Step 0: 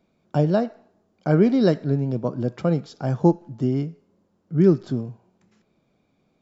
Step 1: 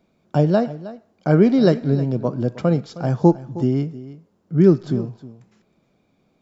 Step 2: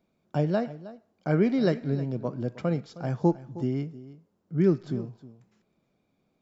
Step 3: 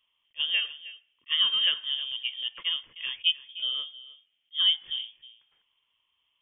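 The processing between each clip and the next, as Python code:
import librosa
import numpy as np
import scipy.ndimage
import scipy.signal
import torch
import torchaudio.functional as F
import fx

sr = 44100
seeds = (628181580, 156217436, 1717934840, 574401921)

y1 = x + 10.0 ** (-16.5 / 20.0) * np.pad(x, (int(314 * sr / 1000.0), 0))[:len(x)]
y1 = y1 * librosa.db_to_amplitude(3.0)
y2 = fx.dynamic_eq(y1, sr, hz=2100.0, q=1.9, threshold_db=-45.0, ratio=4.0, max_db=7)
y2 = y2 * librosa.db_to_amplitude(-9.0)
y3 = fx.peak_eq(y2, sr, hz=120.0, db=-11.5, octaves=0.9)
y3 = fx.freq_invert(y3, sr, carrier_hz=3400)
y3 = fx.attack_slew(y3, sr, db_per_s=600.0)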